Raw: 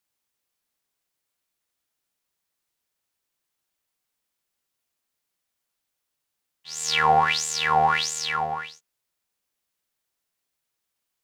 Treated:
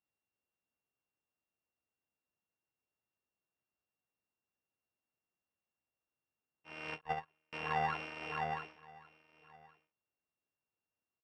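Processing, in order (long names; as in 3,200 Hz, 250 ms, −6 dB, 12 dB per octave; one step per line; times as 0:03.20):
samples sorted by size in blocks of 16 samples
high-pass filter 57 Hz
0:07.01–0:07.53: noise gate −15 dBFS, range −41 dB
downward compressor 2.5 to 1, threshold −25 dBFS, peak gain reduction 7 dB
head-to-tape spacing loss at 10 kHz 43 dB
single-tap delay 1,122 ms −22.5 dB
every ending faded ahead of time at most 400 dB per second
level −3 dB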